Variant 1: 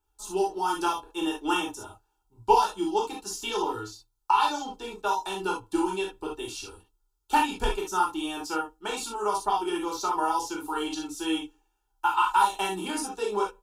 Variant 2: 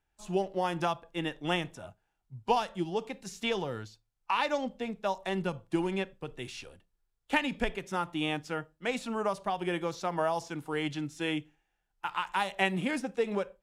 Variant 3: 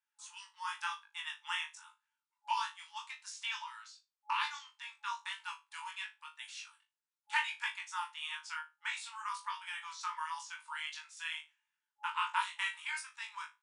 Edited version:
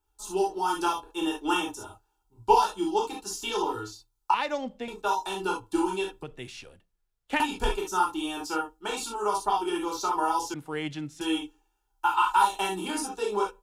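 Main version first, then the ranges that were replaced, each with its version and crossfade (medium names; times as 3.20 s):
1
4.34–4.88 s: from 2
6.23–7.40 s: from 2
10.54–11.21 s: from 2
not used: 3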